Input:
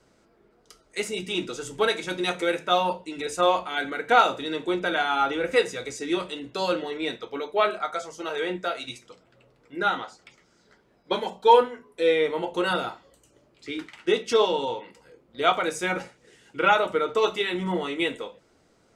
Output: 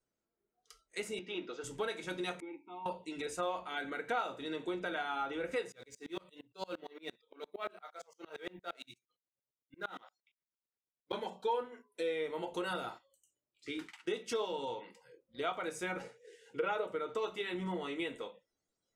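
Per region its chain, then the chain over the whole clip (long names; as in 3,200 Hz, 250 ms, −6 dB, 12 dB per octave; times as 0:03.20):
0:01.19–0:01.64: high-pass filter 300 Hz + high-frequency loss of the air 220 metres
0:02.40–0:02.86: formant filter u + high-shelf EQ 2,200 Hz −11 dB
0:05.72–0:11.13: mu-law and A-law mismatch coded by A + tremolo with a ramp in dB swelling 8.7 Hz, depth 30 dB
0:11.72–0:14.75: noise gate −49 dBFS, range −7 dB + high-shelf EQ 5,700 Hz +7 dB
0:16.02–0:16.95: high-pass filter 61 Hz + parametric band 460 Hz +14.5 dB 0.27 octaves
whole clip: noise reduction from a noise print of the clip's start 21 dB; dynamic equaliser 5,000 Hz, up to −4 dB, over −39 dBFS, Q 0.82; downward compressor 2.5 to 1, threshold −29 dBFS; level −7 dB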